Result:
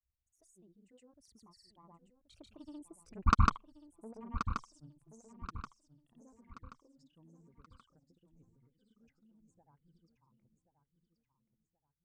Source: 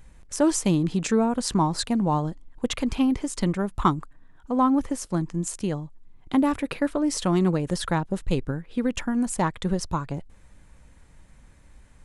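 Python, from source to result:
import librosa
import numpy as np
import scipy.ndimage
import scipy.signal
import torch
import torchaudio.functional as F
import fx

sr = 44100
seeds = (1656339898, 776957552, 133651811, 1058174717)

p1 = fx.envelope_sharpen(x, sr, power=2.0)
p2 = fx.doppler_pass(p1, sr, speed_mps=39, closest_m=2.9, pass_at_s=3.49)
p3 = fx.peak_eq(p2, sr, hz=82.0, db=10.0, octaves=0.85)
p4 = fx.level_steps(p3, sr, step_db=16)
p5 = p3 + (p4 * 10.0 ** (2.0 / 20.0))
p6 = fx.cheby_harmonics(p5, sr, harmonics=(4, 7), levels_db=(-26, -18), full_scale_db=-7.5)
p7 = fx.granulator(p6, sr, seeds[0], grain_ms=100.0, per_s=20.0, spray_ms=100.0, spread_st=0)
p8 = p7 + fx.echo_feedback(p7, sr, ms=1079, feedback_pct=38, wet_db=-10.0, dry=0)
y = p8 * 10.0 ** (7.5 / 20.0)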